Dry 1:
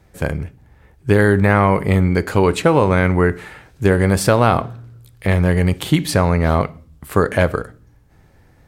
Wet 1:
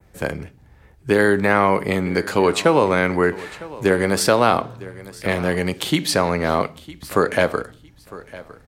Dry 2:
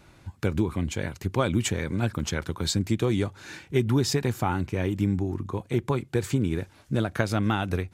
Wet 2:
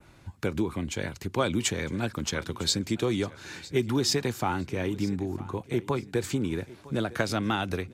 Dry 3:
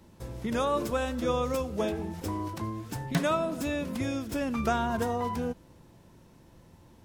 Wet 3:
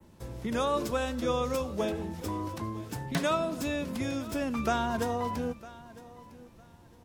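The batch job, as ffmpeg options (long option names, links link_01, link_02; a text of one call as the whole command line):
ffmpeg -i in.wav -filter_complex "[0:a]adynamicequalizer=threshold=0.00794:dfrequency=4700:dqfactor=1:tfrequency=4700:tqfactor=1:attack=5:release=100:ratio=0.375:range=2.5:mode=boostabove:tftype=bell,acrossover=split=190|650|3300[link_01][link_02][link_03][link_04];[link_01]acompressor=threshold=-34dB:ratio=6[link_05];[link_05][link_02][link_03][link_04]amix=inputs=4:normalize=0,aecho=1:1:956|1912:0.112|0.0258,volume=-1dB" out.wav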